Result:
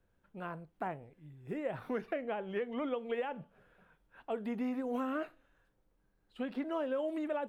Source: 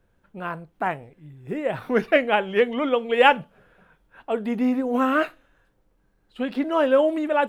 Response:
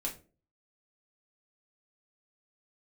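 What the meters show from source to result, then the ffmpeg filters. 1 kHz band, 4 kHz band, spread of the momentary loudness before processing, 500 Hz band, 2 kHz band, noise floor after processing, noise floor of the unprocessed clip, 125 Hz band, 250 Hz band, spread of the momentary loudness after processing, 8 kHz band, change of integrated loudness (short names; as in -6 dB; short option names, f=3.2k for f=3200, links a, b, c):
-18.0 dB, -21.5 dB, 15 LU, -15.0 dB, -20.0 dB, -75 dBFS, -66 dBFS, -10.5 dB, -13.0 dB, 13 LU, n/a, -15.5 dB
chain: -filter_complex "[0:a]alimiter=limit=-12dB:level=0:latency=1:release=165,acrossover=split=730|2000[a][b][c];[a]acompressor=threshold=-25dB:ratio=4[d];[b]acompressor=threshold=-35dB:ratio=4[e];[c]acompressor=threshold=-48dB:ratio=4[f];[d][e][f]amix=inputs=3:normalize=0,volume=-9dB"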